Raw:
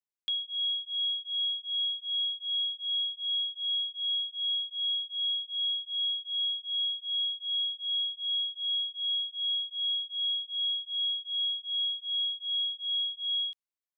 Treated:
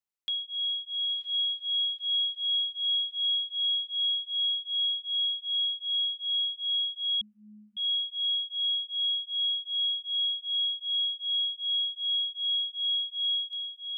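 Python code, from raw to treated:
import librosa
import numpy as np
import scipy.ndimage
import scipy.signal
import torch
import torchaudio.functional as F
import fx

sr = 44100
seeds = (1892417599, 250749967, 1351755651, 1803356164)

y = fx.echo_diffused(x, sr, ms=1010, feedback_pct=57, wet_db=-8.0)
y = fx.freq_invert(y, sr, carrier_hz=3100, at=(7.21, 7.77))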